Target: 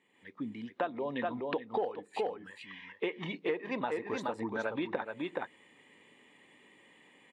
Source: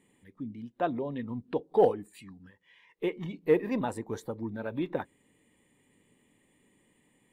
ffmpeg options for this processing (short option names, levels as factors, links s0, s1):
-af "highpass=f=980:p=1,aecho=1:1:423:0.447,dynaudnorm=f=130:g=3:m=3.55,lowpass=3700,acompressor=threshold=0.0251:ratio=8,volume=1.19"